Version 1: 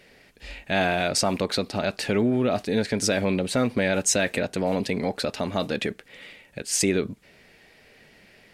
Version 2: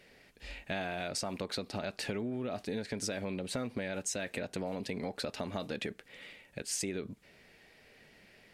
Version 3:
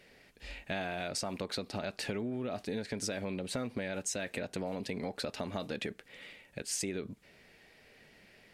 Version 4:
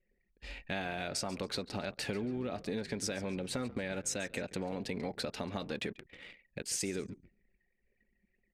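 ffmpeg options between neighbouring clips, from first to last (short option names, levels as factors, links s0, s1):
-af "acompressor=threshold=0.0447:ratio=6,volume=0.501"
-af anull
-filter_complex "[0:a]bandreject=f=640:w=12,asplit=5[s0][s1][s2][s3][s4];[s1]adelay=139,afreqshift=-52,volume=0.141[s5];[s2]adelay=278,afreqshift=-104,volume=0.0638[s6];[s3]adelay=417,afreqshift=-156,volume=0.0285[s7];[s4]adelay=556,afreqshift=-208,volume=0.0129[s8];[s0][s5][s6][s7][s8]amix=inputs=5:normalize=0,anlmdn=0.00398"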